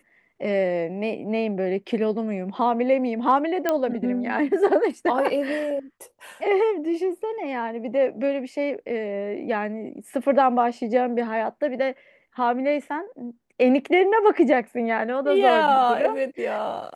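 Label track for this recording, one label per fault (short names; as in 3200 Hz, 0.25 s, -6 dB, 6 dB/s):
3.690000	3.690000	pop -9 dBFS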